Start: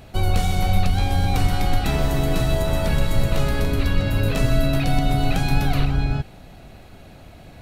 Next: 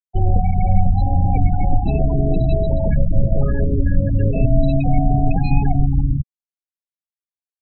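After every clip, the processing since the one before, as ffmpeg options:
ffmpeg -i in.wav -af "afftfilt=real='re*gte(hypot(re,im),0.158)':imag='im*gte(hypot(re,im),0.158)':win_size=1024:overlap=0.75,highshelf=frequency=2600:gain=-10,volume=4dB" out.wav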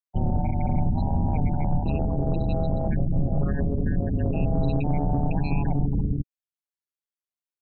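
ffmpeg -i in.wav -filter_complex "[0:a]acrossover=split=830[link_01][link_02];[link_01]asoftclip=type=tanh:threshold=-11.5dB[link_03];[link_03][link_02]amix=inputs=2:normalize=0,tremolo=f=150:d=0.974,volume=-1.5dB" out.wav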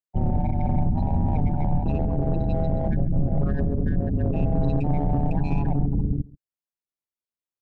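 ffmpeg -i in.wav -filter_complex "[0:a]asplit=2[link_01][link_02];[link_02]adynamicsmooth=sensitivity=3.5:basefreq=1300,volume=2dB[link_03];[link_01][link_03]amix=inputs=2:normalize=0,aecho=1:1:135:0.0841,volume=-6dB" out.wav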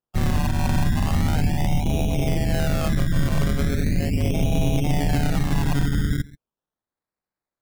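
ffmpeg -i in.wav -filter_complex "[0:a]asplit=2[link_01][link_02];[link_02]asoftclip=type=tanh:threshold=-20dB,volume=-9.5dB[link_03];[link_01][link_03]amix=inputs=2:normalize=0,acrusher=samples=20:mix=1:aa=0.000001:lfo=1:lforange=12:lforate=0.38" out.wav

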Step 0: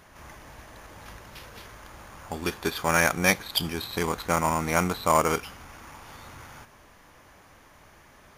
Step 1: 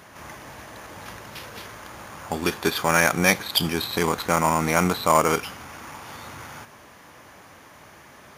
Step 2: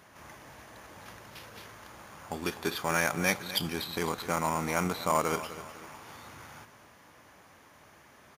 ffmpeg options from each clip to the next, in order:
ffmpeg -i in.wav -filter_complex "[0:a]highpass=100,asplit=2[link_01][link_02];[link_02]alimiter=limit=-17dB:level=0:latency=1:release=41,volume=1dB[link_03];[link_01][link_03]amix=inputs=2:normalize=0" out.wav
ffmpeg -i in.wav -af "aecho=1:1:252|504|756|1008:0.2|0.0838|0.0352|0.0148,volume=-9dB" out.wav

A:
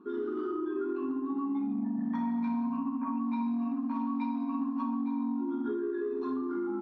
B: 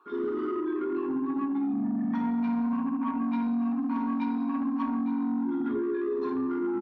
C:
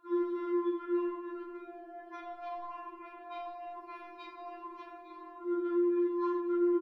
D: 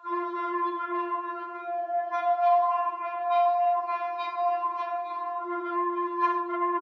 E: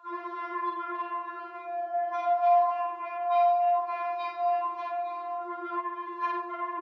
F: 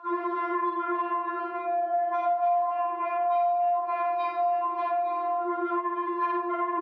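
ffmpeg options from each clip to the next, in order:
ffmpeg -i in.wav -filter_complex "[0:a]asoftclip=type=tanh:threshold=-27.5dB,acrossover=split=600[link_01][link_02];[link_01]adelay=60[link_03];[link_03][link_02]amix=inputs=2:normalize=0,volume=5.5dB" out.wav
ffmpeg -i in.wav -filter_complex "[0:a]asplit=2[link_01][link_02];[link_02]adelay=33,volume=-4dB[link_03];[link_01][link_03]amix=inputs=2:normalize=0,afftfilt=real='re*4*eq(mod(b,16),0)':imag='im*4*eq(mod(b,16),0)':win_size=2048:overlap=0.75" out.wav
ffmpeg -i in.wav -af "aresample=16000,aeval=exprs='0.0794*sin(PI/2*1.58*val(0)/0.0794)':channel_layout=same,aresample=44100,highpass=frequency=760:width_type=q:width=3.7,volume=3dB" out.wav
ffmpeg -i in.wav -filter_complex "[0:a]areverse,acompressor=mode=upward:threshold=-31dB:ratio=2.5,areverse,asplit=2[link_01][link_02];[link_02]adelay=50,volume=-3dB[link_03];[link_01][link_03]amix=inputs=2:normalize=0,volume=-4dB" out.wav
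ffmpeg -i in.wav -af "aemphasis=mode=reproduction:type=riaa,acompressor=threshold=-33dB:ratio=4,volume=8dB" out.wav

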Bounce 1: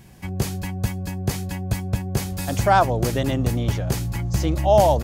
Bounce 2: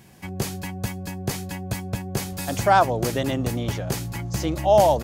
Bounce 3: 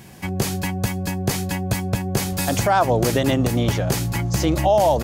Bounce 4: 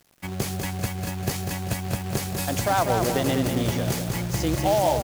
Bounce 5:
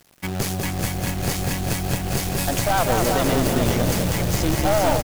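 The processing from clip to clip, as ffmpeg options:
ffmpeg -i in.wav -af "highpass=frequency=170:poles=1" out.wav
ffmpeg -i in.wav -af "alimiter=limit=-16dB:level=0:latency=1:release=117,volume=7.5dB" out.wav
ffmpeg -i in.wav -af "acrusher=bits=3:mode=log:mix=0:aa=0.000001,aeval=exprs='sgn(val(0))*max(abs(val(0))-0.0112,0)':channel_layout=same,aecho=1:1:196|392|588|784|980|1176:0.501|0.231|0.106|0.0488|0.0224|0.0103,volume=-5dB" out.wav
ffmpeg -i in.wav -filter_complex "[0:a]aeval=exprs='(tanh(12.6*val(0)+0.55)-tanh(0.55))/12.6':channel_layout=same,asplit=7[link_01][link_02][link_03][link_04][link_05][link_06][link_07];[link_02]adelay=406,afreqshift=-41,volume=-5.5dB[link_08];[link_03]adelay=812,afreqshift=-82,volume=-11.5dB[link_09];[link_04]adelay=1218,afreqshift=-123,volume=-17.5dB[link_10];[link_05]adelay=1624,afreqshift=-164,volume=-23.6dB[link_11];[link_06]adelay=2030,afreqshift=-205,volume=-29.6dB[link_12];[link_07]adelay=2436,afreqshift=-246,volume=-35.6dB[link_13];[link_01][link_08][link_09][link_10][link_11][link_12][link_13]amix=inputs=7:normalize=0,acrusher=bits=3:mode=log:mix=0:aa=0.000001,volume=6.5dB" out.wav

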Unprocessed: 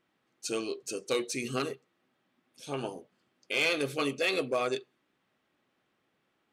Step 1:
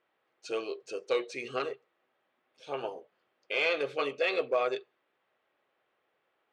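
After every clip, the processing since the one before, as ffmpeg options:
ffmpeg -i in.wav -af "lowpass=3200,lowshelf=frequency=340:width_type=q:width=1.5:gain=-11" out.wav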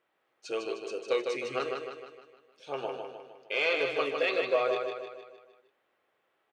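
ffmpeg -i in.wav -af "aecho=1:1:154|308|462|616|770|924:0.562|0.281|0.141|0.0703|0.0351|0.0176" out.wav

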